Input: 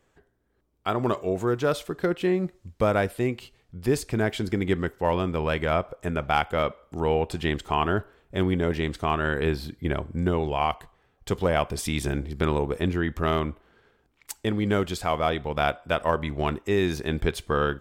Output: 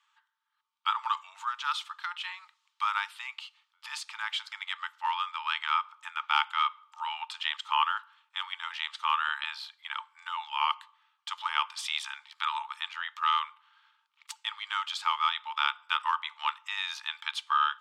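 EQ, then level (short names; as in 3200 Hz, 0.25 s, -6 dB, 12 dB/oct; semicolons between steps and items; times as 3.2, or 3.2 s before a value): rippled Chebyshev high-pass 860 Hz, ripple 9 dB; air absorption 56 m; +6.0 dB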